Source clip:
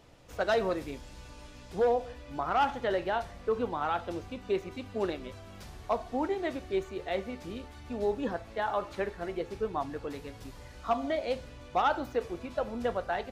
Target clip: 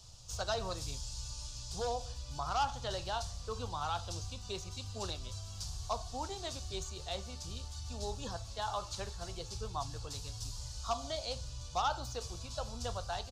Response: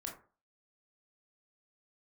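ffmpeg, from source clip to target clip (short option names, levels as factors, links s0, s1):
-filter_complex "[0:a]firequalizer=gain_entry='entry(120,0);entry(180,-14);entry(290,-22);entry(750,-12);entry(1100,-9);entry(2000,-21);entry(2800,-7);entry(4600,8);entry(6700,10);entry(12000,-4)':delay=0.05:min_phase=1,acrossover=split=340|660|2700[s0][s1][s2][s3];[s3]alimiter=level_in=4.73:limit=0.0631:level=0:latency=1:release=311,volume=0.211[s4];[s0][s1][s2][s4]amix=inputs=4:normalize=0,volume=1.88"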